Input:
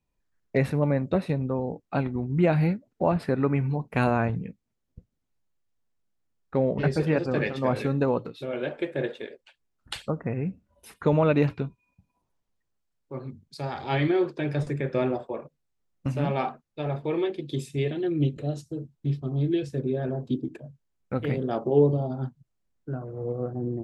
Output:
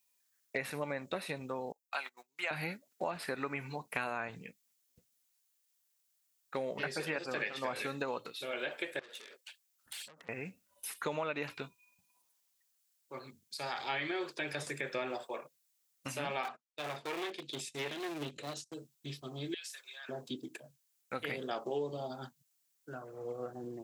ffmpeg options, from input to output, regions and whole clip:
-filter_complex "[0:a]asettb=1/sr,asplit=3[a][b][c];[a]atrim=end=1.724[d];[b]atrim=start=1.72:end=2.51,asetpts=PTS-STARTPTS,afade=t=in:d=0.004:c=qsin,afade=t=out:st=0.786:d=0.004:c=qsin,highpass=880,highshelf=f=5k:g=9.5,agate=range=-21dB:threshold=-46dB:ratio=16:release=100:detection=peak[e];[c]atrim=start=2.506[f];[d][e]acrossfade=d=0.004:c1=hsin:c2=qsin[g];[g][f]acrossfade=d=0.004:c1=qsin:c2=hsin,asettb=1/sr,asplit=3[h][i][j];[h]atrim=end=8.994[k];[i]atrim=start=8.99:end=10.29,asetpts=PTS-STARTPTS,afade=t=in:d=0.004:c=qsin,afade=t=out:st=1.296:d=0.004:c=qsin,acompressor=threshold=-39dB:ratio=10:attack=3.2:release=140:knee=1:detection=peak,aeval=exprs='(tanh(178*val(0)+0.15)-tanh(0.15))/178':c=same[l];[j]atrim=start=10.286[m];[k][l]acrossfade=d=0.004:c1=hsin:c2=qsin[n];[n][m]acrossfade=d=0.004:c1=qsin:c2=hsin,asettb=1/sr,asplit=3[o][p][q];[o]atrim=end=16.434[r];[p]atrim=start=16.43:end=18.74,asetpts=PTS-STARTPTS,afade=t=in:d=0.004:c=qsin,afade=t=out:st=2.306:d=0.004:c=qsin,agate=range=-18dB:threshold=-46dB:ratio=16:release=100:detection=peak,lowpass=6.8k,aeval=exprs='clip(val(0),-1,0.0316)':c=same[s];[q]atrim=start=18.736[t];[r][s]acrossfade=d=0.004:c1=hsin:c2=qsin[u];[u][t]acrossfade=d=0.004:c1=qsin:c2=hsin,asettb=1/sr,asplit=3[v][w][x];[v]atrim=end=19.544[y];[w]atrim=start=19.54:end=20.09,asetpts=PTS-STARTPTS,afade=t=in:d=0.004:c=qsin,afade=t=out:st=0.546:d=0.004:c=qsin,highpass=f=1.1k:w=0.5412,highpass=f=1.1k:w=1.3066,acompressor=threshold=-48dB:ratio=2:attack=3.2:release=140:knee=1:detection=peak[z];[x]atrim=start=20.086[aa];[y][z]acrossfade=d=0.004:c1=hsin:c2=qsin[ab];[ab][aa]acrossfade=d=0.004:c1=qsin:c2=hsin,acrossover=split=2800[ac][ad];[ad]acompressor=threshold=-54dB:ratio=4:attack=1:release=60[ae];[ac][ae]amix=inputs=2:normalize=0,aderivative,acompressor=threshold=-47dB:ratio=5,volume=14.5dB"

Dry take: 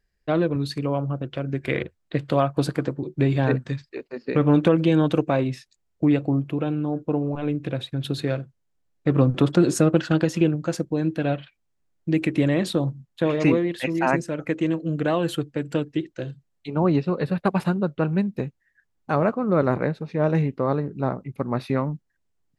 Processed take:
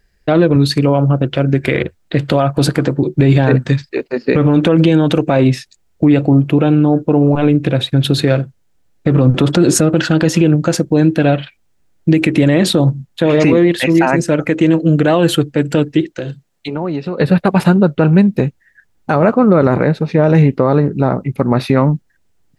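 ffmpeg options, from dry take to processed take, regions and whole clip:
-filter_complex "[0:a]asettb=1/sr,asplit=3[a][b][c];[a]atrim=end=16.054[d];[b]atrim=start=16.05:end=17.2,asetpts=PTS-STARTPTS,afade=t=in:d=0.004:c=qsin,afade=t=out:st=1.146:d=0.004:c=qsin,lowshelf=f=130:g=-10,acompressor=threshold=-33dB:ratio=4:attack=3.2:release=140:knee=1:detection=peak[e];[c]atrim=start=17.196[f];[d][e]acrossfade=d=0.004:c1=hsin:c2=qsin[g];[g][f]acrossfade=d=0.004:c1=qsin:c2=hsin,bandreject=f=1.1k:w=14,alimiter=level_in=16dB:limit=-1dB:release=50:level=0:latency=1,volume=-1dB"

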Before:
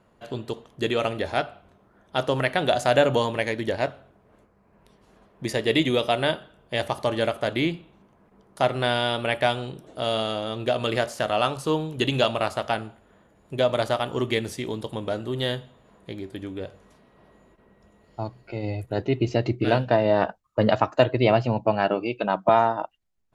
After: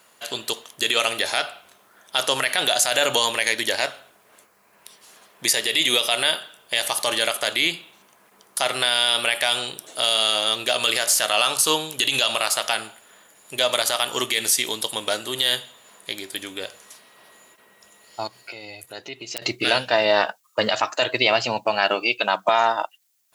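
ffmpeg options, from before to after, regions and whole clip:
-filter_complex "[0:a]asettb=1/sr,asplit=3[a][b][c];[a]atrim=end=18.274[d];[b]atrim=start=18.27:end=19.42,asetpts=PTS-STARTPTS,afade=t=in:d=0.004:c=qsin,afade=t=out:st=1.146:d=0.004:c=qsin,aeval=exprs='(mod(3.35*val(0)+1,2)-1)/3.35':c=same,acompressor=threshold=-43dB:ratio=2:attack=3.2:release=140:knee=1:detection=peak[e];[c]atrim=start=19.416[f];[d][e]acrossfade=d=0.004:c1=hsin:c2=qsin[g];[g][f]acrossfade=d=0.004:c1=qsin:c2=hsin,aderivative,alimiter=level_in=29dB:limit=-1dB:release=50:level=0:latency=1,volume=-6dB"

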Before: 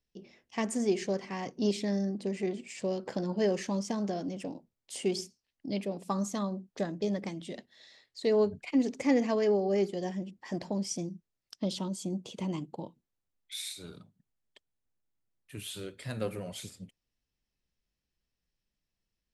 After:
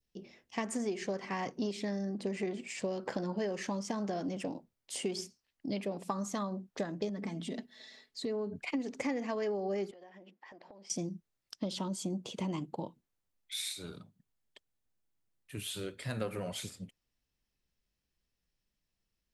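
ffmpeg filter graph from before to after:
-filter_complex "[0:a]asettb=1/sr,asplit=3[a][b][c];[a]atrim=end=7.094[d];[b]atrim=start=7.09:end=8.56,asetpts=PTS-STARTPTS,afade=t=in:d=0.004:c=qsin,afade=t=out:st=1.466:d=0.004:c=qsin,equalizer=f=270:t=o:w=0.87:g=9.5,aecho=1:1:4.6:0.6,atrim=end_sample=64827,acompressor=threshold=-37dB:ratio=3:attack=3.2:release=140:knee=1:detection=peak[e];[c]atrim=start=8.556[f];[d][e]acrossfade=d=0.004:c1=hsin:c2=qsin[g];[g][f]acrossfade=d=0.004:c1=qsin:c2=hsin,asettb=1/sr,asplit=3[h][i][j];[h]atrim=end=9.914[k];[i]atrim=start=9.91:end=10.9,asetpts=PTS-STARTPTS,afade=t=in:d=0.004:c=qsin,afade=t=out:st=0.986:d=0.004:c=qsin,highpass=460,lowpass=2.9k,acompressor=threshold=-51dB:ratio=20:attack=3.2:release=140:knee=1:detection=peak[l];[j]atrim=start=10.896[m];[k][l]acrossfade=d=0.004:c1=hsin:c2=qsin[n];[n][m]acrossfade=d=0.004:c1=qsin:c2=hsin,adynamicequalizer=threshold=0.00562:dfrequency=1300:dqfactor=0.72:tfrequency=1300:tqfactor=0.72:attack=5:release=100:ratio=0.375:range=3:mode=boostabove:tftype=bell,acompressor=threshold=-32dB:ratio=12,volume=1dB"

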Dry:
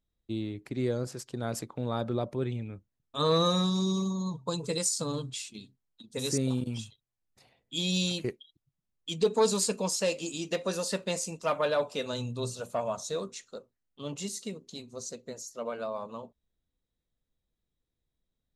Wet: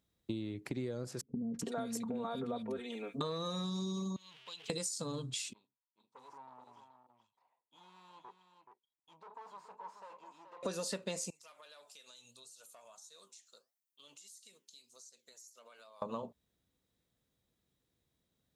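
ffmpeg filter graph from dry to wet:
-filter_complex "[0:a]asettb=1/sr,asplit=3[a][b][c];[a]atrim=end=1.214[d];[b]atrim=start=1.21:end=3.21,asetpts=PTS-STARTPTS,afade=t=in:d=0.004:c=qsin,afade=t=out:st=1.996:d=0.004:c=qsin,bandreject=f=4.9k:w=9.6,aecho=1:1:4.3:0.84,atrim=end_sample=88200,acrossover=split=320|2100[e][f][g];[f]adelay=330[h];[g]adelay=380[i];[e][h][i]amix=inputs=3:normalize=0,atrim=end_sample=88200[j];[c]atrim=start=3.206[k];[d][j]acrossfade=d=0.004:c1=hsin:c2=qsin[l];[l][k]acrossfade=d=0.004:c1=qsin:c2=hsin,asettb=1/sr,asplit=3[m][n][o];[m]atrim=end=4.164[p];[n]atrim=start=4.16:end=4.7,asetpts=PTS-STARTPTS,afade=t=in:d=0.004:c=qsin,afade=t=out:st=0.536:d=0.004:c=qsin,aeval=exprs='val(0)+0.5*0.0126*sgn(val(0))':c=same,bandpass=f=3k:t=q:w=5.1,acompressor=threshold=-51dB:ratio=3:attack=3.2:release=140:knee=1:detection=peak[q];[o]atrim=start=4.696[r];[p][q]acrossfade=d=0.004:c1=hsin:c2=qsin[s];[s][r]acrossfade=d=0.004:c1=qsin:c2=hsin,asettb=1/sr,asplit=3[t][u][v];[t]atrim=end=5.534[w];[u]atrim=start=5.53:end=10.63,asetpts=PTS-STARTPTS,afade=t=in:d=0.004:c=qsin,afade=t=out:st=5.096:d=0.004:c=qsin,aeval=exprs='(tanh(89.1*val(0)+0.7)-tanh(0.7))/89.1':c=same,bandpass=f=970:t=q:w=9.3,aecho=1:1:427:0.398,atrim=end_sample=224910[x];[v]atrim=start=10.626[y];[w][x]acrossfade=d=0.004:c1=hsin:c2=qsin[z];[z][y]acrossfade=d=0.004:c1=qsin:c2=hsin,asettb=1/sr,asplit=3[aa][ab][ac];[aa]atrim=end=11.304[ad];[ab]atrim=start=11.3:end=16.02,asetpts=PTS-STARTPTS,afade=t=in:d=0.004:c=qsin,afade=t=out:st=4.716:d=0.004:c=qsin,aderivative,acompressor=threshold=-56dB:ratio=6:attack=3.2:release=140:knee=1:detection=peak,flanger=delay=5.1:depth=6.3:regen=88:speed=1.6:shape=triangular[ae];[ac]atrim=start=16.016[af];[ad][ae]acrossfade=d=0.004:c1=hsin:c2=qsin[ag];[ag][af]acrossfade=d=0.004:c1=qsin:c2=hsin,highpass=89,acompressor=threshold=-42dB:ratio=12,volume=6.5dB"

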